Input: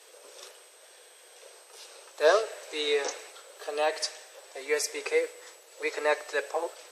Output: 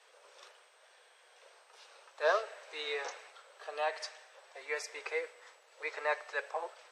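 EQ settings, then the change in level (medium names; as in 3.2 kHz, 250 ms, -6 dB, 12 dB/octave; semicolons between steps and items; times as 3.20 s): high-pass 860 Hz 12 dB/octave; distance through air 56 m; treble shelf 2.5 kHz -11 dB; 0.0 dB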